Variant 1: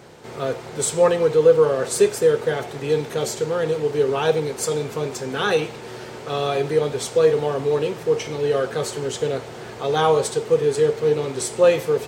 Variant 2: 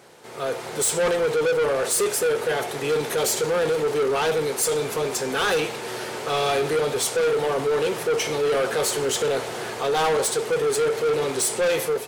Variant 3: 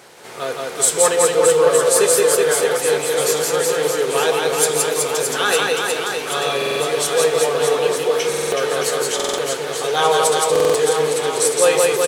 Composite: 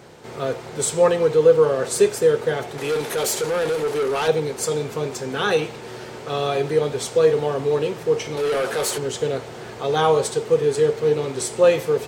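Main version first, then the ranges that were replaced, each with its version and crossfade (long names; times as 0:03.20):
1
0:02.78–0:04.28: punch in from 2
0:08.37–0:08.98: punch in from 2
not used: 3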